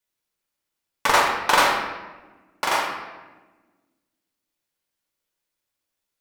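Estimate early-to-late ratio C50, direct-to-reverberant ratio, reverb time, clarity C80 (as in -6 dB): 3.0 dB, -1.5 dB, 1.2 s, 5.5 dB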